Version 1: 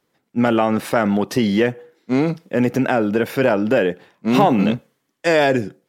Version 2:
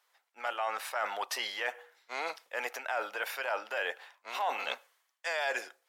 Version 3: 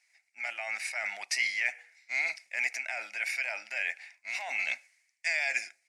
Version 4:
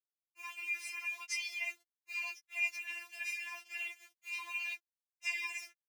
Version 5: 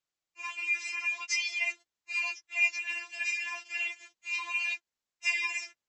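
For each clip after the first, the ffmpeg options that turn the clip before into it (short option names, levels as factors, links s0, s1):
-af "highpass=f=750:w=0.5412,highpass=f=750:w=1.3066,areverse,acompressor=threshold=0.0251:ratio=4,areverse"
-af "firequalizer=gain_entry='entry(150,0);entry(460,-23);entry(660,-7);entry(1100,-20);entry(2200,13);entry(3200,-10);entry(4800,5);entry(9300,3);entry(14000,-20)':delay=0.05:min_phase=1,volume=1.19"
-af "aeval=exprs='val(0)*gte(abs(val(0)),0.00708)':c=same,afreqshift=200,afftfilt=real='re*4*eq(mod(b,16),0)':imag='im*4*eq(mod(b,16),0)':win_size=2048:overlap=0.75,volume=0.562"
-af "volume=2.51" -ar 32000 -c:a libmp3lame -b:a 32k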